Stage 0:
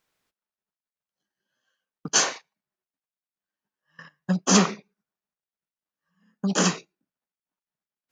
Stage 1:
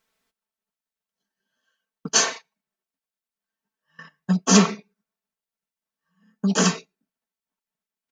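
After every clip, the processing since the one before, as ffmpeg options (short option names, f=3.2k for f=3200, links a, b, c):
-af "aecho=1:1:4.5:0.69"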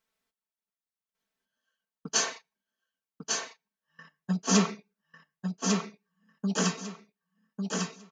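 -af "aecho=1:1:1149|2298|3447:0.631|0.139|0.0305,volume=-8dB"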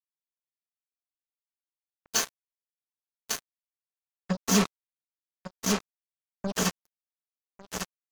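-af "acrusher=bits=3:mix=0:aa=0.5"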